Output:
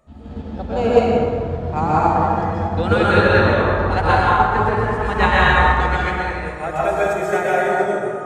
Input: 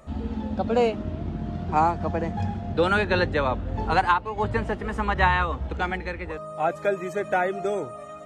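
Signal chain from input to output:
0:05.02–0:07.63: high-shelf EQ 3,400 Hz +9 dB
dense smooth reverb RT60 3 s, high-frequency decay 0.45×, pre-delay 110 ms, DRR −8 dB
expander for the loud parts 1.5 to 1, over −32 dBFS
level +1.5 dB

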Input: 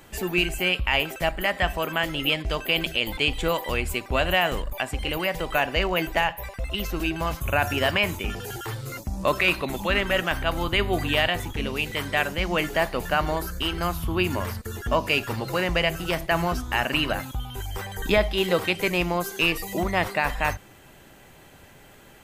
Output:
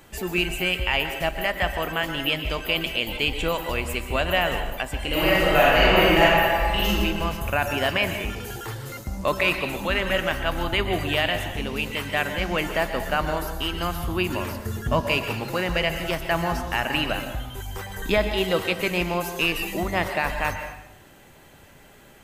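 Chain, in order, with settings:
0:05.07–0:06.89: thrown reverb, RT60 1.7 s, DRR −7.5 dB
0:14.61–0:15.01: parametric band 130 Hz +11.5 dB 1.1 octaves
dense smooth reverb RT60 0.82 s, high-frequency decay 0.85×, pre-delay 110 ms, DRR 7.5 dB
level −1 dB

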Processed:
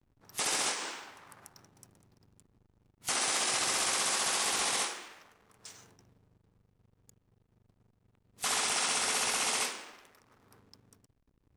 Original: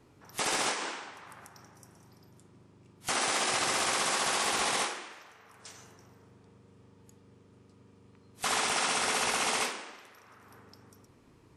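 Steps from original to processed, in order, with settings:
high-shelf EQ 3,500 Hz +8.5 dB
slack as between gear wheels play −47.5 dBFS
level −5 dB

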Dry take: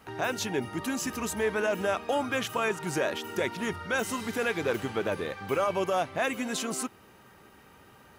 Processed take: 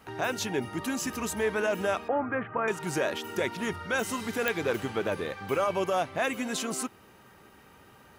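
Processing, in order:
0:02.08–0:02.68: Butterworth low-pass 2,000 Hz 36 dB per octave
digital clicks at 0:04.48, −11 dBFS

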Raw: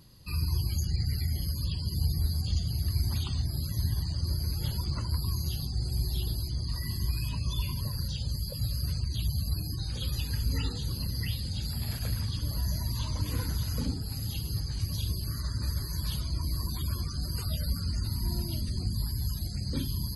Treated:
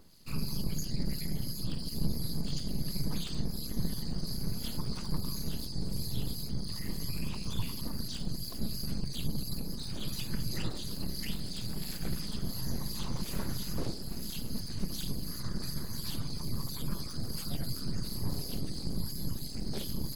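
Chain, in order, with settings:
full-wave rectification
two-band tremolo in antiphase 2.9 Hz, depth 50%, crossover 2,000 Hz
level +1 dB

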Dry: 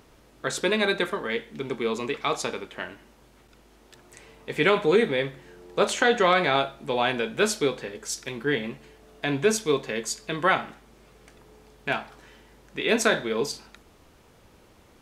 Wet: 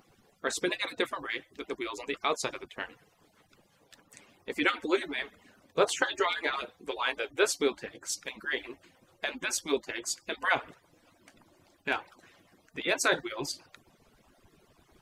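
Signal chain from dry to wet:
harmonic-percussive split with one part muted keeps percussive
level −2.5 dB

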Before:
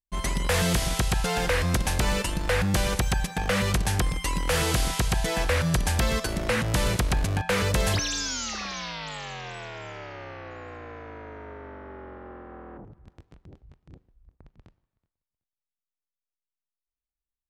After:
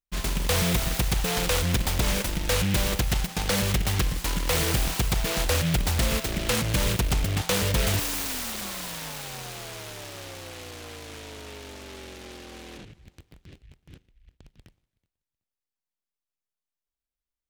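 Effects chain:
short delay modulated by noise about 2,400 Hz, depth 0.21 ms

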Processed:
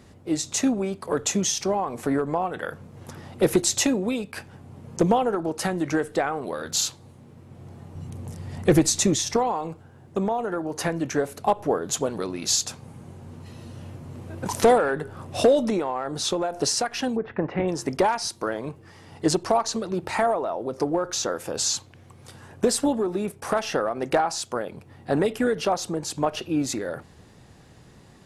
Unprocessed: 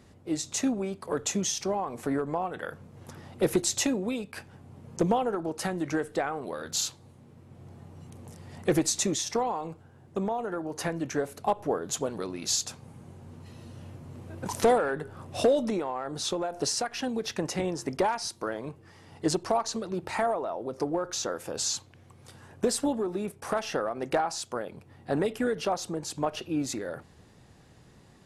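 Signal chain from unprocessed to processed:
0:07.95–0:09.37: low-shelf EQ 160 Hz +9 dB
0:17.15–0:17.67: low-pass filter 1,500 Hz → 2,700 Hz 24 dB per octave
level +5 dB

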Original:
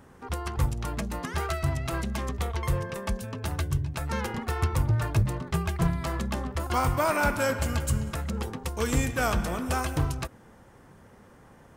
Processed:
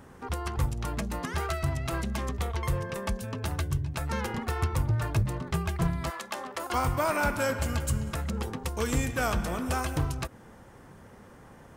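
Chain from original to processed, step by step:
0:06.09–0:06.73: high-pass filter 840 Hz → 330 Hz 12 dB per octave
in parallel at +1.5 dB: downward compressor, threshold −34 dBFS, peak gain reduction 15 dB
on the sum: level −4.5 dB

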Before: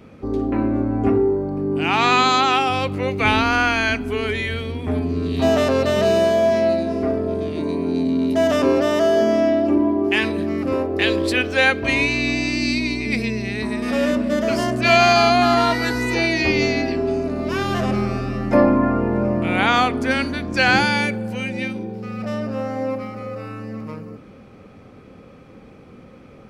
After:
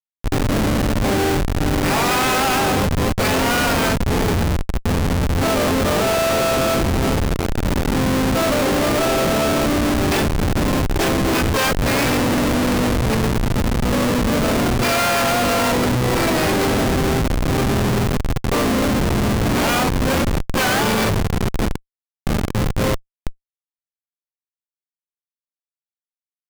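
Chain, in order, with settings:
delay with a high-pass on its return 441 ms, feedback 31%, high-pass 2,200 Hz, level −8 dB
pitch-shifted copies added −4 semitones −8 dB, +12 semitones −2 dB
comparator with hysteresis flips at −16 dBFS

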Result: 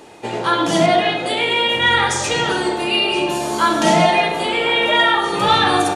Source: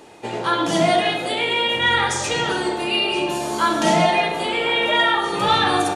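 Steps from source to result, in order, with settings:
0:00.86–0:01.26: high-frequency loss of the air 78 metres
level +3 dB

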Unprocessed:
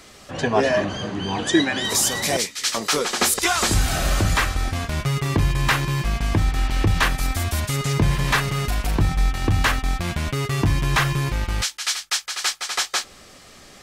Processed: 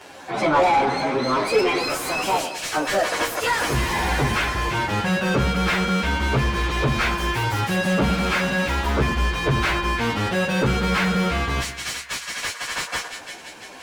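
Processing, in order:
phase-vocoder pitch shift without resampling +5 semitones
echo with a time of its own for lows and highs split 1,700 Hz, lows 104 ms, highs 339 ms, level −14 dB
mid-hump overdrive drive 22 dB, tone 1,100 Hz, clips at −8 dBFS

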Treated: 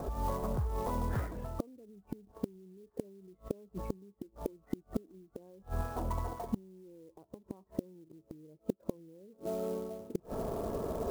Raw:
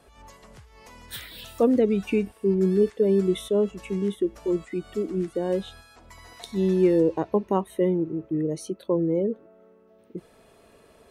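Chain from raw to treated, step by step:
low-pass filter 1,100 Hz 24 dB per octave
low-shelf EQ 160 Hz +3 dB
reversed playback
upward compression, threshold −30 dBFS
reversed playback
brickwall limiter −17 dBFS, peak gain reduction 8.5 dB
downward compressor 10 to 1, threshold −26 dBFS, peak gain reduction 6.5 dB
gate with flip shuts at −26 dBFS, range −31 dB
converter with an unsteady clock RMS 0.03 ms
level +6.5 dB

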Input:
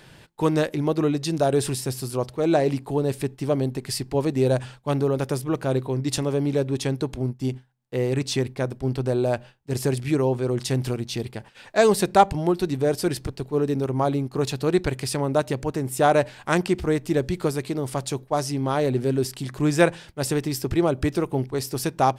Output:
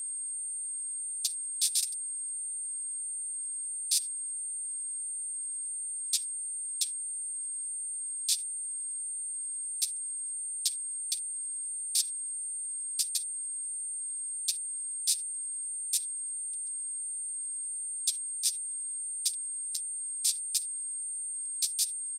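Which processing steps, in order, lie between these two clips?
compressor on every frequency bin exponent 0.2
inverse Chebyshev high-pass filter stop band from 1,100 Hz, stop band 60 dB
parametric band 8,800 Hz +5.5 dB 0.21 octaves
on a send: single-tap delay 344 ms −12 dB
on the sum: output level in coarse steps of 22 dB
comb filter 6.6 ms, depth 37%
noise gate −30 dBFS, range −22 dB
harmonic and percussive parts rebalanced harmonic −9 dB
steady tone 8,600 Hz −30 dBFS
flanger 1.5 Hz, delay 5.5 ms, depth 9.5 ms, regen +16%

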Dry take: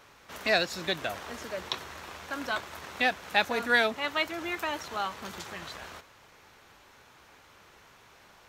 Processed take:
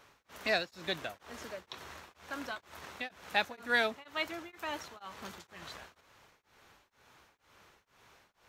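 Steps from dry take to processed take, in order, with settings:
tremolo along a rectified sine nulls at 2.1 Hz
level −4.5 dB

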